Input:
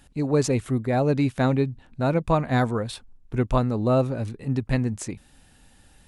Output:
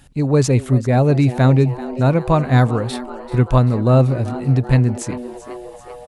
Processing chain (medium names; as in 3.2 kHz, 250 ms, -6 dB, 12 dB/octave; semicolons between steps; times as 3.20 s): peaking EQ 130 Hz +7.5 dB 0.37 oct; frequency-shifting echo 388 ms, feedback 64%, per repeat +120 Hz, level -16.5 dB; trim +5 dB